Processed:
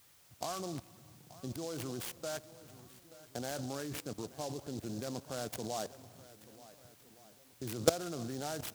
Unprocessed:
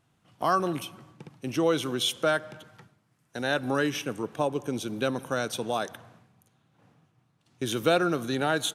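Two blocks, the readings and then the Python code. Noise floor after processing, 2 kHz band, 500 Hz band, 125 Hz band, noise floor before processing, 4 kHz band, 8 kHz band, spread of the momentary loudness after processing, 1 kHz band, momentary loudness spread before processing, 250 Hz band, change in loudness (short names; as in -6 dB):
-63 dBFS, -17.5 dB, -11.0 dB, -7.5 dB, -70 dBFS, -12.5 dB, -4.5 dB, 17 LU, -14.0 dB, 10 LU, -11.5 dB, -11.0 dB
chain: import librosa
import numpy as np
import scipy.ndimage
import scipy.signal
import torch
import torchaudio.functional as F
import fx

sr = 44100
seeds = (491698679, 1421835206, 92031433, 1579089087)

y = fx.wiener(x, sr, points=15)
y = fx.level_steps(y, sr, step_db=20)
y = fx.peak_eq(y, sr, hz=77.0, db=9.5, octaves=1.2)
y = fx.echo_swing(y, sr, ms=1468, ratio=1.5, feedback_pct=32, wet_db=-18.5)
y = y + 10.0 ** (-59.0 / 20.0) * np.sin(2.0 * np.pi * 5800.0 * np.arange(len(y)) / sr)
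y = fx.peak_eq(y, sr, hz=690.0, db=6.5, octaves=0.49)
y = fx.noise_mod_delay(y, sr, seeds[0], noise_hz=5300.0, depth_ms=0.092)
y = y * librosa.db_to_amplitude(-1.5)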